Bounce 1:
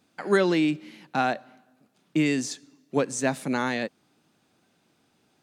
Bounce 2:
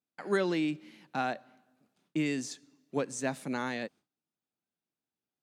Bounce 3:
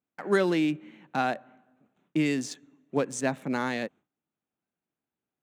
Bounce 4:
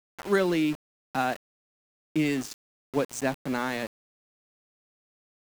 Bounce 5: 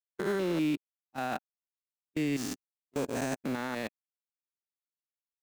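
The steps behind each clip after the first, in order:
gate with hold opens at -53 dBFS; gain -7.5 dB
Wiener smoothing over 9 samples; gain +5 dB
sample gate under -34.5 dBFS
stepped spectrum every 0.2 s; gate -46 dBFS, range -14 dB; limiter -27.5 dBFS, peak gain reduction 10.5 dB; gain +4.5 dB

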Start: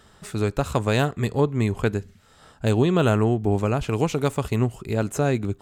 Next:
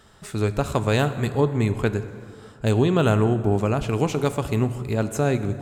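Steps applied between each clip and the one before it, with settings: plate-style reverb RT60 2.4 s, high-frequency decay 0.55×, DRR 11 dB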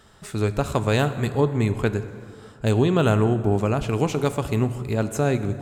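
nothing audible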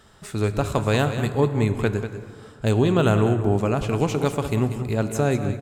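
echo 0.191 s -10.5 dB

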